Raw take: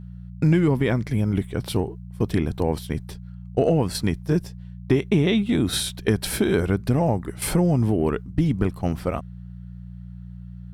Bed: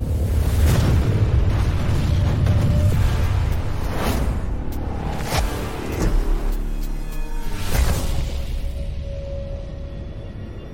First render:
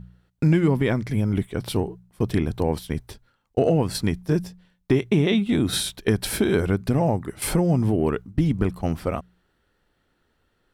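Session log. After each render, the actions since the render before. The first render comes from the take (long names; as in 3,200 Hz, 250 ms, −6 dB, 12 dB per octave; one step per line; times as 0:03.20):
hum removal 60 Hz, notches 3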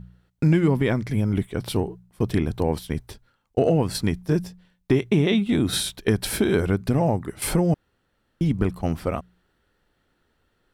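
0:07.74–0:08.41: fill with room tone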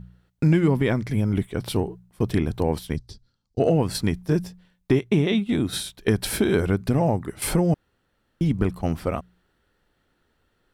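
0:02.96–0:03.60: drawn EQ curve 180 Hz 0 dB, 620 Hz −13 dB, 2,600 Hz −15 dB, 4,700 Hz +5 dB, 13,000 Hz −17 dB
0:04.99–0:06.01: expander for the loud parts, over −30 dBFS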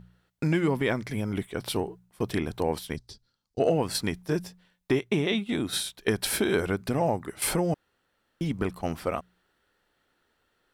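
low-shelf EQ 270 Hz −11.5 dB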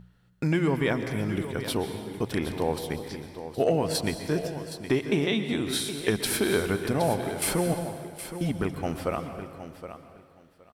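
repeating echo 768 ms, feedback 17%, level −11.5 dB
dense smooth reverb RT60 1.7 s, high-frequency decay 0.85×, pre-delay 110 ms, DRR 8.5 dB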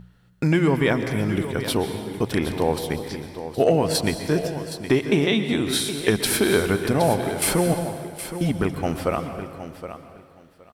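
level +5.5 dB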